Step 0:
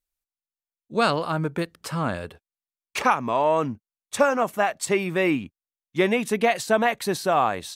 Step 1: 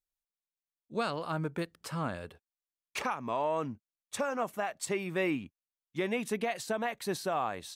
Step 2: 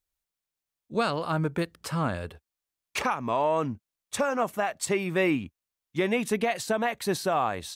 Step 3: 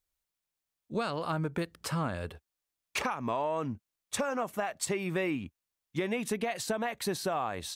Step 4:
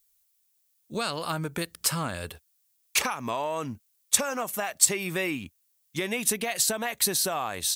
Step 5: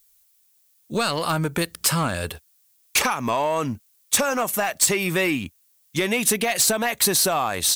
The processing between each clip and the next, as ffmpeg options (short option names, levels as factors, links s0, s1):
-af "alimiter=limit=0.211:level=0:latency=1:release=237,volume=0.398"
-af "equalizer=f=68:w=1.2:g=7,volume=2"
-af "acompressor=threshold=0.0355:ratio=4"
-af "crystalizer=i=5:c=0"
-af "asoftclip=type=tanh:threshold=0.0891,volume=2.66"